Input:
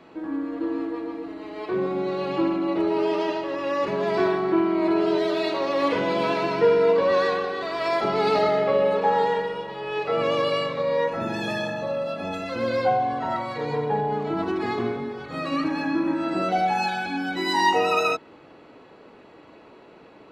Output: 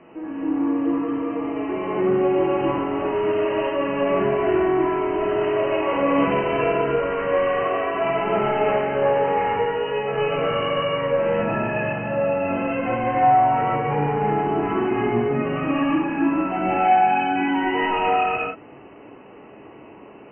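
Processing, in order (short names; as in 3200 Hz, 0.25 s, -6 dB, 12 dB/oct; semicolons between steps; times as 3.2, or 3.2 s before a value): bell 1500 Hz -4 dB 0.43 oct; in parallel at -3 dB: vocal rider 0.5 s; on the sum: soft clip -16.5 dBFS, distortion -13 dB; brick-wall FIR low-pass 3100 Hz; non-linear reverb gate 0.4 s rising, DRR -7.5 dB; gain -7 dB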